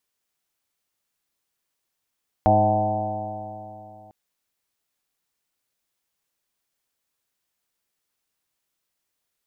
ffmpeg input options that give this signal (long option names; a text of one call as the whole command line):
ffmpeg -f lavfi -i "aevalsrc='0.0944*pow(10,-3*t/3.03)*sin(2*PI*103.1*t)+0.0631*pow(10,-3*t/3.03)*sin(2*PI*206.82*t)+0.0531*pow(10,-3*t/3.03)*sin(2*PI*311.77*t)+0.0133*pow(10,-3*t/3.03)*sin(2*PI*418.54*t)+0.0422*pow(10,-3*t/3.03)*sin(2*PI*527.72*t)+0.126*pow(10,-3*t/3.03)*sin(2*PI*639.86*t)+0.158*pow(10,-3*t/3.03)*sin(2*PI*755.5*t)+0.0473*pow(10,-3*t/3.03)*sin(2*PI*875.15*t)+0.00944*pow(10,-3*t/3.03)*sin(2*PI*999.27*t)':duration=1.65:sample_rate=44100" out.wav